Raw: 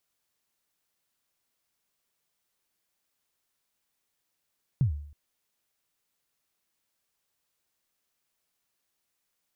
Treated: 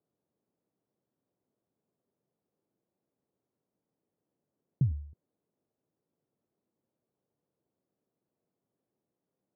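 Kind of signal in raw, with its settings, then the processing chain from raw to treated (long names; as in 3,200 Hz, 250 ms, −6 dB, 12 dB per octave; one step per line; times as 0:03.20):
synth kick length 0.32 s, from 150 Hz, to 73 Hz, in 107 ms, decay 0.61 s, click off, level −17.5 dB
in parallel at +2 dB: compressor whose output falls as the input rises −31 dBFS, ratio −0.5
on the sum: flat-topped band-pass 240 Hz, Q 0.61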